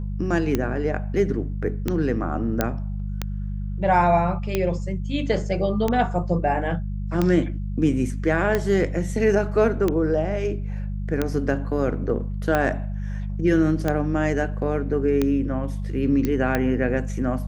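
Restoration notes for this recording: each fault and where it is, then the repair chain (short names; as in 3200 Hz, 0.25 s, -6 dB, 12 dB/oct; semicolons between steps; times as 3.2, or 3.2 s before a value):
hum 50 Hz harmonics 4 -28 dBFS
tick 45 rpm -9 dBFS
2.61 pop -6 dBFS
16.25 pop -11 dBFS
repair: de-click; de-hum 50 Hz, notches 4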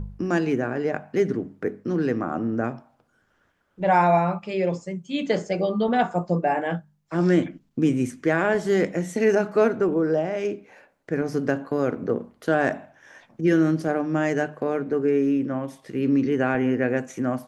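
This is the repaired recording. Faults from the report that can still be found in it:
none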